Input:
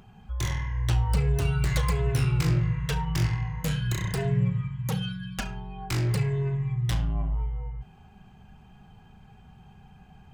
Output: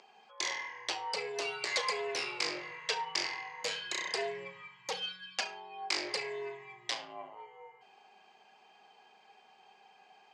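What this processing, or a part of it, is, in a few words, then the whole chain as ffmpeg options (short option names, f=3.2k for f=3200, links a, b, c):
phone speaker on a table: -af "highpass=f=430:w=0.5412,highpass=f=430:w=1.3066,equalizer=f=1.4k:t=q:w=4:g=-7,equalizer=f=2.2k:t=q:w=4:g=4,equalizer=f=4.7k:t=q:w=4:g=9,lowpass=f=7.4k:w=0.5412,lowpass=f=7.4k:w=1.3066"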